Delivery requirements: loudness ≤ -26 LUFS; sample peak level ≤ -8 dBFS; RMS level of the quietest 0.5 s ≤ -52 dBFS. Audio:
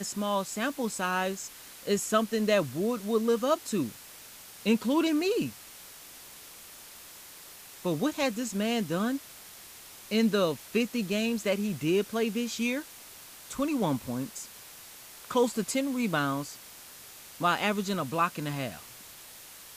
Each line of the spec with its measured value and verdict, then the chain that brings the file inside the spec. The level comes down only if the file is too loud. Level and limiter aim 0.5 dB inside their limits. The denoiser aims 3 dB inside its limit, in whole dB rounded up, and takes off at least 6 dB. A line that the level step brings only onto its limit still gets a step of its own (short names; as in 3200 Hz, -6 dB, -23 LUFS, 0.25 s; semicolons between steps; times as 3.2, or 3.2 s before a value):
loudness -29.5 LUFS: OK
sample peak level -12.5 dBFS: OK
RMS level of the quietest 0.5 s -49 dBFS: fail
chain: denoiser 6 dB, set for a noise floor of -49 dBFS